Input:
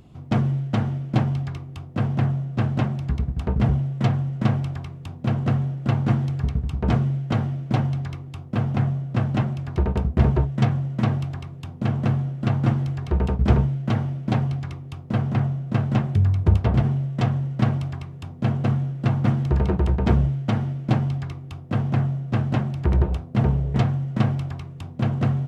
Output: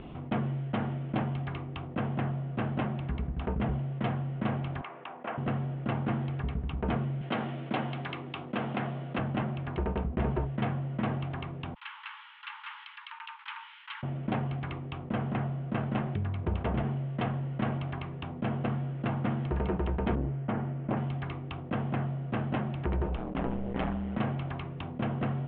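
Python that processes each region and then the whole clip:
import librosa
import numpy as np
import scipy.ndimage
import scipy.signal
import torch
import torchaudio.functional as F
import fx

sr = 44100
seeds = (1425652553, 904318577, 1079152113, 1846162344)

y = fx.chain(x, sr, fx.bandpass_edges(low_hz=710.0, high_hz=2500.0),
    fx.air_absorb(metres=170.0), at=(4.81, 5.38))
y = fx.chain(y, sr, fx.highpass(hz=190.0, slope=12),
    fx.high_shelf(hz=3400.0, db=11.5), at=(7.21, 9.19))
y = fx.chain(y, sr, fx.brickwall_highpass(low_hz=820.0),
    fx.differentiator(), at=(11.74, 14.03))
y = fx.chain(y, sr, fx.lowpass(hz=2000.0, slope=12),
    fx.transformer_sat(knee_hz=250.0), at=(20.15, 20.97))
y = fx.chain(y, sr, fx.low_shelf(hz=150.0, db=-9.5),
    fx.ring_mod(carrier_hz=61.0),
    fx.sustainer(db_per_s=27.0), at=(23.16, 24.17))
y = scipy.signal.sosfilt(scipy.signal.butter(8, 3300.0, 'lowpass', fs=sr, output='sos'), y)
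y = fx.peak_eq(y, sr, hz=100.0, db=-12.5, octaves=1.3)
y = fx.env_flatten(y, sr, amount_pct=50)
y = y * librosa.db_to_amplitude(-7.0)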